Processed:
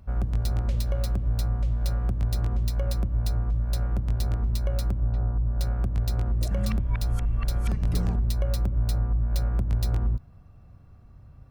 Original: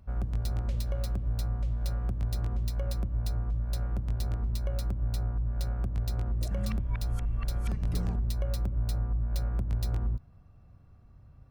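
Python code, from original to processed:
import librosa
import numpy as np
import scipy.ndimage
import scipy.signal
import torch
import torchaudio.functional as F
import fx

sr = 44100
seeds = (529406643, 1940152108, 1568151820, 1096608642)

y = fx.lowpass(x, sr, hz=1400.0, slope=12, at=(5.0, 5.61))
y = F.gain(torch.from_numpy(y), 5.0).numpy()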